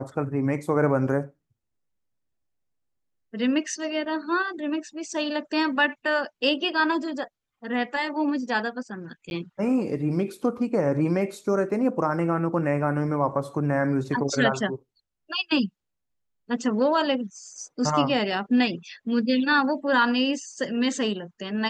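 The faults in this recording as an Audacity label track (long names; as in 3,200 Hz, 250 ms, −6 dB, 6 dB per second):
9.300000	9.310000	drop-out 11 ms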